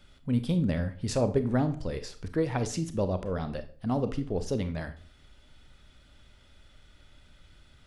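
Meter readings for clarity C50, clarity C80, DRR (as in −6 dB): 12.5 dB, 17.5 dB, 9.5 dB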